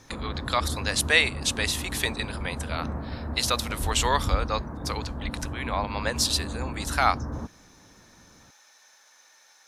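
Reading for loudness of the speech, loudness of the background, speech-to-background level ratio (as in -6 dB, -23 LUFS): -27.0 LUFS, -34.0 LUFS, 7.0 dB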